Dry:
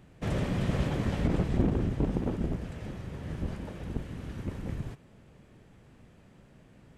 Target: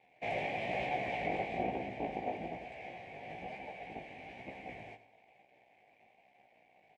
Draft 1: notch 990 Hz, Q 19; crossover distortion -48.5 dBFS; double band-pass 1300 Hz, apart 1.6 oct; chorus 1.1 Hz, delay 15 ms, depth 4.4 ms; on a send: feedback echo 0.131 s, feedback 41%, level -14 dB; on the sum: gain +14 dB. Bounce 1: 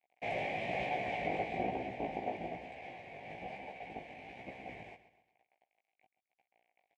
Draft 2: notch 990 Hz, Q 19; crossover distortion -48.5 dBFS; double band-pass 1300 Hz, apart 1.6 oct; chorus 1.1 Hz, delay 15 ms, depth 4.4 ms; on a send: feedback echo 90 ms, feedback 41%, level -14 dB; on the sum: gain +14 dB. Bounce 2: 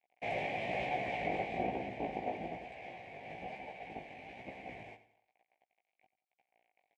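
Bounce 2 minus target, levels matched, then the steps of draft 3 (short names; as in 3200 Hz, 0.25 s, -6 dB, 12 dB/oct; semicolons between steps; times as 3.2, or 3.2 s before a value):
crossover distortion: distortion +7 dB
notch 990 Hz, Q 19; crossover distortion -57 dBFS; double band-pass 1300 Hz, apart 1.6 oct; chorus 1.1 Hz, delay 15 ms, depth 4.4 ms; on a send: feedback echo 90 ms, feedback 41%, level -14 dB; on the sum: gain +14 dB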